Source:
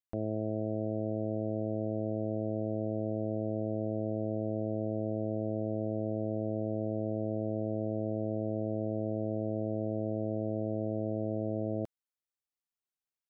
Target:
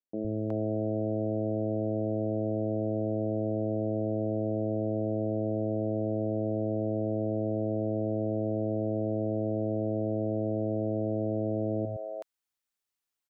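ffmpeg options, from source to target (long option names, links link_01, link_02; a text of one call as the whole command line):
ffmpeg -i in.wav -filter_complex "[0:a]lowshelf=frequency=290:gain=-3,acontrast=61,acrossover=split=160|550[link_01][link_02][link_03];[link_01]adelay=110[link_04];[link_03]adelay=370[link_05];[link_04][link_02][link_05]amix=inputs=3:normalize=0" out.wav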